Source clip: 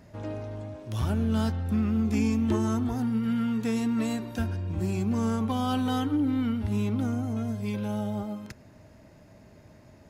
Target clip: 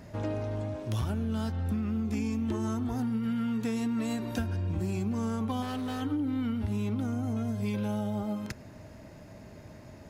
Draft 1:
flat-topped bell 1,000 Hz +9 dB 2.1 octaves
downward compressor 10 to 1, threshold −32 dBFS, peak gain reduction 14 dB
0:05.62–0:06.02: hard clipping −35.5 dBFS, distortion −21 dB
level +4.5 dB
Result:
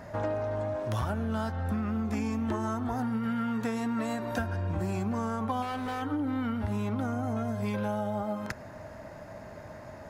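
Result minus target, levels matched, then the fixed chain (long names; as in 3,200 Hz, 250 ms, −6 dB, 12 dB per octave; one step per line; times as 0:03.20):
1,000 Hz band +6.5 dB
downward compressor 10 to 1, threshold −32 dBFS, peak gain reduction 12 dB
0:05.62–0:06.02: hard clipping −35.5 dBFS, distortion −22 dB
level +4.5 dB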